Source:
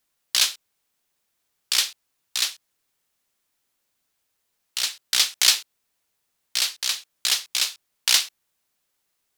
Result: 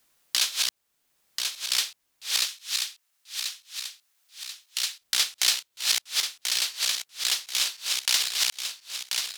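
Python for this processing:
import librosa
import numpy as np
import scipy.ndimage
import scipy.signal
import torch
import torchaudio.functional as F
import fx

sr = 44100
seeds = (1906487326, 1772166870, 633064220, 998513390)

y = fx.reverse_delay_fb(x, sr, ms=518, feedback_pct=55, wet_db=-2.5)
y = fx.highpass(y, sr, hz=1300.0, slope=6, at=(2.45, 5.01))
y = fx.band_squash(y, sr, depth_pct=40)
y = F.gain(torch.from_numpy(y), -4.0).numpy()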